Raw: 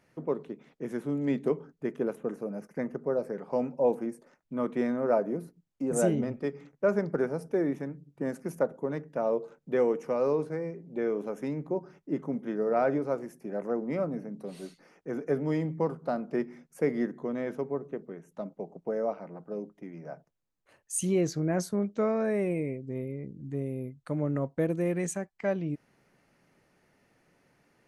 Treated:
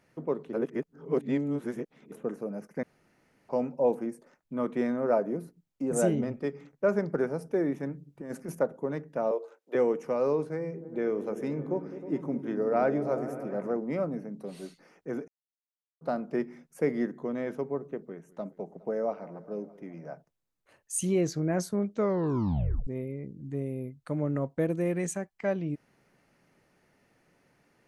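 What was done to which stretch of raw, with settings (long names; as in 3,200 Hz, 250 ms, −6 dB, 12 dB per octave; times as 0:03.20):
0:00.53–0:02.12: reverse
0:02.83–0:03.49: fill with room tone
0:07.83–0:08.55: compressor whose output falls as the input rises −34 dBFS, ratio −0.5
0:09.31–0:09.75: high-pass filter 400 Hz 24 dB per octave
0:10.47–0:13.77: echo whose low-pass opens from repeat to repeat 105 ms, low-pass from 200 Hz, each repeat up 1 octave, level −6 dB
0:15.28–0:16.01: silence
0:17.99–0:20.06: feedback echo with a swinging delay time 207 ms, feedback 70%, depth 74 cents, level −21 dB
0:22.00: tape stop 0.87 s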